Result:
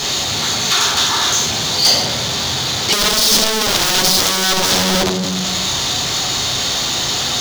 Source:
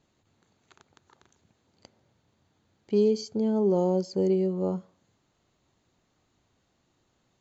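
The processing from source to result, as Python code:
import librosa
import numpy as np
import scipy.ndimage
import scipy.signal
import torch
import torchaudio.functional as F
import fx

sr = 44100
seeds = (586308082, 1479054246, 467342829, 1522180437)

y = fx.tilt_shelf(x, sr, db=-6.5, hz=720.0)
y = fx.room_shoebox(y, sr, seeds[0], volume_m3=130.0, walls='mixed', distance_m=3.3)
y = fx.power_curve(y, sr, exponent=0.35)
y = scipy.signal.sosfilt(scipy.signal.butter(2, 41.0, 'highpass', fs=sr, output='sos'), y)
y = (np.mod(10.0 ** (12.0 / 20.0) * y + 1.0, 2.0) - 1.0) / 10.0 ** (12.0 / 20.0)
y = fx.band_shelf(y, sr, hz=4600.0, db=9.0, octaves=1.3)
y = y * 10.0 ** (-1.0 / 20.0)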